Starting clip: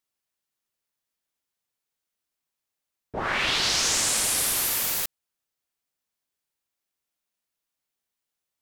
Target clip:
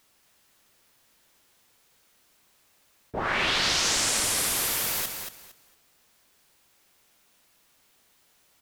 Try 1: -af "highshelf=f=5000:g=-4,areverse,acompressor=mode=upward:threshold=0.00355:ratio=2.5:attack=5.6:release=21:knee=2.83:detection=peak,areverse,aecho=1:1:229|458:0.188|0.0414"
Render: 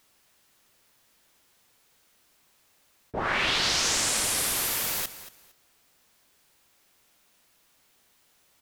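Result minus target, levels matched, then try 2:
echo-to-direct -8 dB
-af "highshelf=f=5000:g=-4,areverse,acompressor=mode=upward:threshold=0.00355:ratio=2.5:attack=5.6:release=21:knee=2.83:detection=peak,areverse,aecho=1:1:229|458|687:0.473|0.104|0.0229"

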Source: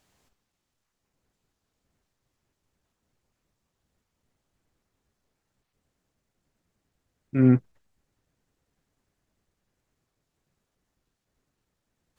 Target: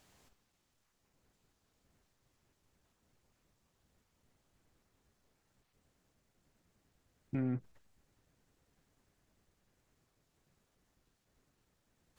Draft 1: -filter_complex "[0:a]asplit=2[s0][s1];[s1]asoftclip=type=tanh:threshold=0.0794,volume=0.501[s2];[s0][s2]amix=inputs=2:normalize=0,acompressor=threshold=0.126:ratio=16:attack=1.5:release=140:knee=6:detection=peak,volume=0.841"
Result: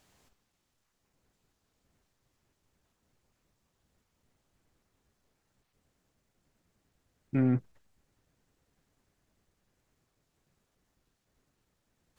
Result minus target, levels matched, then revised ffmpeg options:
compression: peak gain reduction -9 dB
-filter_complex "[0:a]asplit=2[s0][s1];[s1]asoftclip=type=tanh:threshold=0.0794,volume=0.501[s2];[s0][s2]amix=inputs=2:normalize=0,acompressor=threshold=0.0422:ratio=16:attack=1.5:release=140:knee=6:detection=peak,volume=0.841"

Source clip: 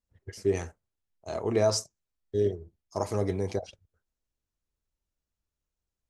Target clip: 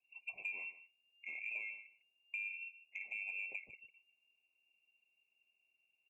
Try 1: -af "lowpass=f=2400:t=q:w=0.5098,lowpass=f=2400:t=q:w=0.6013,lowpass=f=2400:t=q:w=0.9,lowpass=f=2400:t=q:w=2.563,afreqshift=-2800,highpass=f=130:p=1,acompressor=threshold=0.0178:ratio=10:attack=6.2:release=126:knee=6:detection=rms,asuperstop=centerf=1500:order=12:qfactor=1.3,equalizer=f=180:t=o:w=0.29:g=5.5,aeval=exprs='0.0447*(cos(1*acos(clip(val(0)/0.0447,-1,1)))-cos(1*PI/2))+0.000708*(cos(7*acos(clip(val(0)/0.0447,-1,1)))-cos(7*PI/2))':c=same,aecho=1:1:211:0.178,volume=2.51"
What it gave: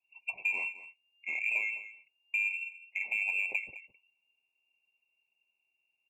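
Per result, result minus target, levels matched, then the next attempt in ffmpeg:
compression: peak gain reduction -10.5 dB; echo 59 ms late; 1 kHz band +3.0 dB
-af "lowpass=f=2400:t=q:w=0.5098,lowpass=f=2400:t=q:w=0.6013,lowpass=f=2400:t=q:w=0.9,lowpass=f=2400:t=q:w=2.563,afreqshift=-2800,highpass=f=130:p=1,acompressor=threshold=0.00447:ratio=10:attack=6.2:release=126:knee=6:detection=rms,asuperstop=centerf=1500:order=12:qfactor=1.3,equalizer=f=180:t=o:w=0.29:g=5.5,aeval=exprs='0.0447*(cos(1*acos(clip(val(0)/0.0447,-1,1)))-cos(1*PI/2))+0.000708*(cos(7*acos(clip(val(0)/0.0447,-1,1)))-cos(7*PI/2))':c=same,aecho=1:1:211:0.178,volume=2.51"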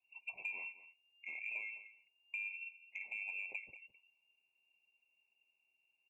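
echo 59 ms late; 1 kHz band +4.0 dB
-af "lowpass=f=2400:t=q:w=0.5098,lowpass=f=2400:t=q:w=0.6013,lowpass=f=2400:t=q:w=0.9,lowpass=f=2400:t=q:w=2.563,afreqshift=-2800,highpass=f=130:p=1,acompressor=threshold=0.00447:ratio=10:attack=6.2:release=126:knee=6:detection=rms,asuperstop=centerf=1500:order=12:qfactor=1.3,equalizer=f=180:t=o:w=0.29:g=5.5,aeval=exprs='0.0447*(cos(1*acos(clip(val(0)/0.0447,-1,1)))-cos(1*PI/2))+0.000708*(cos(7*acos(clip(val(0)/0.0447,-1,1)))-cos(7*PI/2))':c=same,aecho=1:1:152:0.178,volume=2.51"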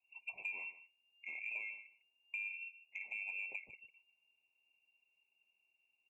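1 kHz band +4.0 dB
-af "lowpass=f=2400:t=q:w=0.5098,lowpass=f=2400:t=q:w=0.6013,lowpass=f=2400:t=q:w=0.9,lowpass=f=2400:t=q:w=2.563,afreqshift=-2800,highpass=f=130:p=1,equalizer=f=910:t=o:w=0.23:g=-10,acompressor=threshold=0.00447:ratio=10:attack=6.2:release=126:knee=6:detection=rms,asuperstop=centerf=1500:order=12:qfactor=1.3,equalizer=f=180:t=o:w=0.29:g=5.5,aeval=exprs='0.0447*(cos(1*acos(clip(val(0)/0.0447,-1,1)))-cos(1*PI/2))+0.000708*(cos(7*acos(clip(val(0)/0.0447,-1,1)))-cos(7*PI/2))':c=same,aecho=1:1:152:0.178,volume=2.51"

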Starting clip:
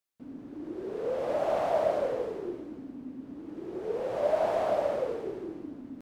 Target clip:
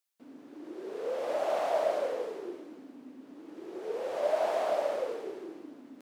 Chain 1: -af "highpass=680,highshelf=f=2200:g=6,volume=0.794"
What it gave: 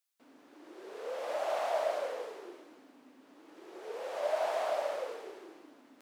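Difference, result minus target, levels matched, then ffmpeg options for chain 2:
250 Hz band -7.0 dB
-af "highpass=330,highshelf=f=2200:g=6,volume=0.794"

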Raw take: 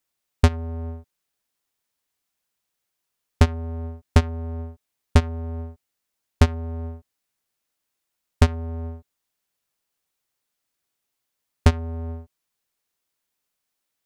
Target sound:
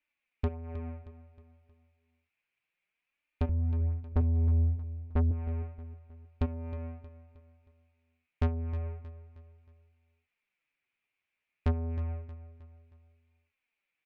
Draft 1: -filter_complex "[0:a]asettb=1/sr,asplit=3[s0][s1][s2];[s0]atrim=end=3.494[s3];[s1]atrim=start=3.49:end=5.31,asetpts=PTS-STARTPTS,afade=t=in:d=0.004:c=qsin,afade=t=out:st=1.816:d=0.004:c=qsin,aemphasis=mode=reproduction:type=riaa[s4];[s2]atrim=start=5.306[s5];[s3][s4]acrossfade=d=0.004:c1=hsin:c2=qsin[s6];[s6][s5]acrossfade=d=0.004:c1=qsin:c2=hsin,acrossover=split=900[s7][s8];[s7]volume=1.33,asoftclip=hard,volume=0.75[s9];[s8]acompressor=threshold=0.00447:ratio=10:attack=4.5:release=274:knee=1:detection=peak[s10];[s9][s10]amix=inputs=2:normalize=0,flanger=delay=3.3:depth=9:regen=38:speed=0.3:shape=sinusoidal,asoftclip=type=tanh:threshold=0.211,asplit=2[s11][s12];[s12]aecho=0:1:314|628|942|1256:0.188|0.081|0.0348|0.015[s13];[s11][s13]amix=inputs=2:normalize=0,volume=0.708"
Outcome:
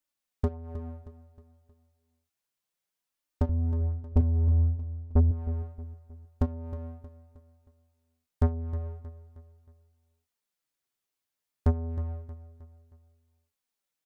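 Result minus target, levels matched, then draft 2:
2 kHz band -7.0 dB; saturation: distortion -4 dB
-filter_complex "[0:a]asettb=1/sr,asplit=3[s0][s1][s2];[s0]atrim=end=3.494[s3];[s1]atrim=start=3.49:end=5.31,asetpts=PTS-STARTPTS,afade=t=in:d=0.004:c=qsin,afade=t=out:st=1.816:d=0.004:c=qsin,aemphasis=mode=reproduction:type=riaa[s4];[s2]atrim=start=5.306[s5];[s3][s4]acrossfade=d=0.004:c1=hsin:c2=qsin[s6];[s6][s5]acrossfade=d=0.004:c1=qsin:c2=hsin,acrossover=split=900[s7][s8];[s7]volume=1.33,asoftclip=hard,volume=0.75[s9];[s8]acompressor=threshold=0.00447:ratio=10:attack=4.5:release=274:knee=1:detection=peak,lowpass=f=2400:t=q:w=6.9[s10];[s9][s10]amix=inputs=2:normalize=0,flanger=delay=3.3:depth=9:regen=38:speed=0.3:shape=sinusoidal,asoftclip=type=tanh:threshold=0.1,asplit=2[s11][s12];[s12]aecho=0:1:314|628|942|1256:0.188|0.081|0.0348|0.015[s13];[s11][s13]amix=inputs=2:normalize=0,volume=0.708"

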